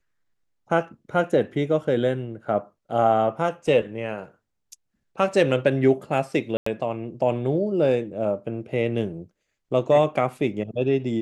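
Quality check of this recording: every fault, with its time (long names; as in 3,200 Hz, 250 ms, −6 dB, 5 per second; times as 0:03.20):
0:06.57–0:06.66: drop-out 94 ms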